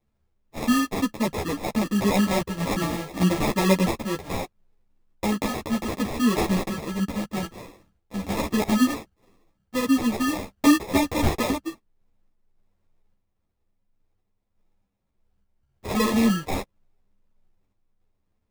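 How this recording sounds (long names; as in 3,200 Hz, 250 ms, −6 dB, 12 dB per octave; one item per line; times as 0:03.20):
aliases and images of a low sample rate 1,500 Hz, jitter 0%
sample-and-hold tremolo
a shimmering, thickened sound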